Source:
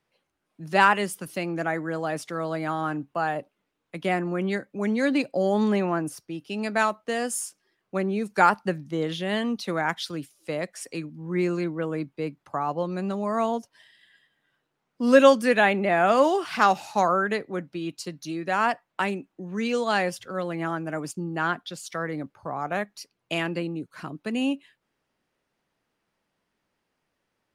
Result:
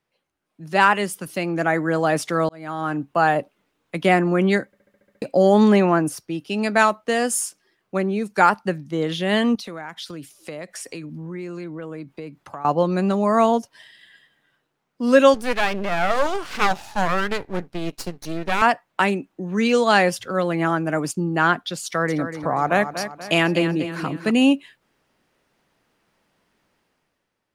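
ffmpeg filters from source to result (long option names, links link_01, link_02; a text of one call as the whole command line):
ffmpeg -i in.wav -filter_complex "[0:a]asettb=1/sr,asplit=3[link_01][link_02][link_03];[link_01]atrim=end=9.554[link_04];[link_02]atrim=start=9.55:end=12.65,asetpts=PTS-STARTPTS,afade=type=in:duration=0.004:curve=qsin,afade=type=out:start_time=3.096:duration=0.004:curve=qsin,acompressor=threshold=-41dB:ratio=5:attack=3.2:release=140:knee=1:detection=peak[link_05];[link_03]atrim=start=12.646[link_06];[link_04][link_05]acrossfade=duration=0.004:curve1=hsin:curve2=qsin[link_07];[link_07][link_06]acrossfade=duration=0.004:curve1=qsin:curve2=hsin,asettb=1/sr,asplit=3[link_08][link_09][link_10];[link_08]atrim=end=15.344[link_11];[link_09]atrim=start=15.34:end=18.62,asetpts=PTS-STARTPTS,afade=type=in:duration=0.004:curve=qsin,afade=type=out:start_time=3.276:duration=0.004:curve=qsin,aeval=exprs='max(val(0),0)':channel_layout=same[link_12];[link_10]atrim=start=18.616[link_13];[link_11][link_12]acrossfade=duration=0.004:curve1=hsin:curve2=qsin[link_14];[link_14][link_13]acrossfade=duration=0.004:curve1=qsin:curve2=hsin,asettb=1/sr,asplit=3[link_15][link_16][link_17];[link_15]atrim=end=21.844[link_18];[link_16]atrim=start=21.84:end=24.31,asetpts=PTS-STARTPTS,afade=type=in:duration=0.004:curve=qsin,afade=type=out:start_time=2.466:duration=0.004:curve=qsin,aecho=1:1:241|482|723|964:0.316|0.133|0.0558|0.0234,atrim=end_sample=108927[link_19];[link_17]atrim=start=24.306[link_20];[link_18][link_19]acrossfade=duration=0.004:curve1=hsin:curve2=qsin[link_21];[link_21][link_20]acrossfade=duration=0.004:curve1=qsin:curve2=hsin,asplit=10[link_22][link_23][link_24][link_25][link_26][link_27][link_28][link_29][link_30][link_31];[link_22]atrim=end=2.49,asetpts=PTS-STARTPTS,afade=type=out:start_time=2.486:duration=0.004:curve=hsin[link_32];[link_23]atrim=start=2.49:end=4.732,asetpts=PTS-STARTPTS,afade=type=in:duration=0.77[link_33];[link_24]atrim=start=4.658:end=4.732[link_34];[link_25]atrim=start=4.658:end=4.732[link_35];[link_26]atrim=start=4.658:end=4.732[link_36];[link_27]atrim=start=4.658:end=4.732[link_37];[link_28]atrim=start=4.658:end=4.732[link_38];[link_29]atrim=start=4.658:end=4.732[link_39];[link_30]atrim=start=4.658:end=4.732[link_40];[link_31]atrim=start=5.218[link_41];[link_32][link_33]concat=n=2:v=0:a=1[link_42];[link_42][link_34]acrossfade=duration=0.004:curve1=hsin:curve2=hsin[link_43];[link_43][link_35]acrossfade=duration=0.004:curve1=hsin:curve2=hsin[link_44];[link_44][link_36]acrossfade=duration=0.004:curve1=hsin:curve2=hsin[link_45];[link_45][link_37]acrossfade=duration=0.004:curve1=hsin:curve2=hsin[link_46];[link_46][link_38]acrossfade=duration=0.004:curve1=hsin:curve2=hsin[link_47];[link_47][link_39]acrossfade=duration=0.004:curve1=hsin:curve2=hsin[link_48];[link_48][link_40]acrossfade=duration=0.004:curve1=hsin:curve2=hsin[link_49];[link_49][link_41]acrossfade=duration=0.004:curve1=hsin:curve2=hsin,dynaudnorm=framelen=110:gausssize=13:maxgain=11.5dB,volume=-1.5dB" out.wav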